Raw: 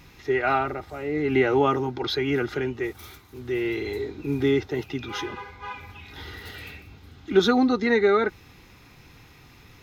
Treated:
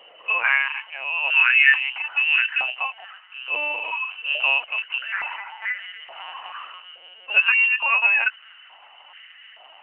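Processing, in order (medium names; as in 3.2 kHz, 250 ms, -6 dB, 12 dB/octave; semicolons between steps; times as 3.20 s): frequency inversion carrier 3 kHz; LPC vocoder at 8 kHz pitch kept; step-sequenced high-pass 2.3 Hz 510–1800 Hz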